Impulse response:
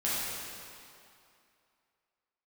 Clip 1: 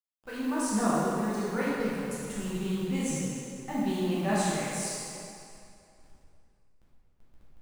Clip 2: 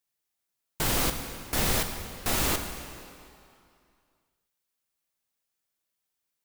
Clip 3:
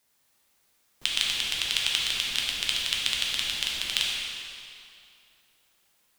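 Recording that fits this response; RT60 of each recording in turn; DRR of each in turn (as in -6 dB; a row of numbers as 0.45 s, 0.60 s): 1; 2.5 s, 2.5 s, 2.5 s; -9.5 dB, 6.0 dB, -4.0 dB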